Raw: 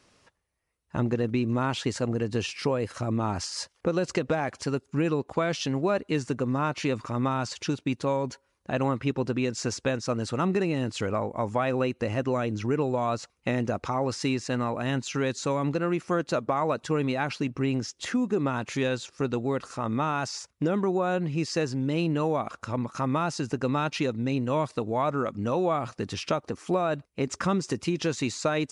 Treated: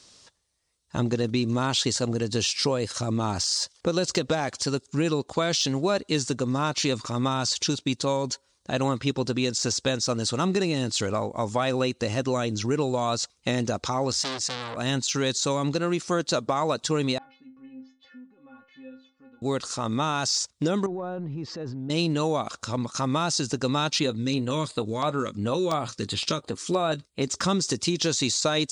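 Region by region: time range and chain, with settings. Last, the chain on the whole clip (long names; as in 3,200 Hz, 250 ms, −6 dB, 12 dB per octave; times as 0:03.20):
0:14.12–0:14.77: parametric band 66 Hz +11.5 dB 0.37 octaves + saturating transformer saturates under 3,000 Hz
0:17.18–0:19.42: low-pass filter 2,500 Hz 24 dB per octave + downward compressor 2 to 1, threshold −41 dBFS + stiff-string resonator 260 Hz, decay 0.39 s, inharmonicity 0.008
0:20.86–0:21.90: low-pass filter 1,200 Hz + downward compressor 2.5 to 1, threshold −33 dBFS + transient designer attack −5 dB, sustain +7 dB
0:23.99–0:27.22: auto-filter notch square 2.9 Hz 740–5,700 Hz + double-tracking delay 19 ms −14 dB
whole clip: de-essing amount 85%; flat-topped bell 5,500 Hz +13 dB; level +1 dB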